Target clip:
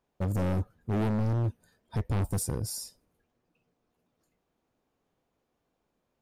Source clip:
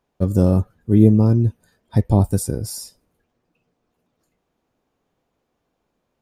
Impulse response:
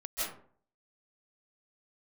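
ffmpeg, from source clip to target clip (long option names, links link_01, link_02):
-af "volume=20dB,asoftclip=hard,volume=-20dB,volume=-5.5dB"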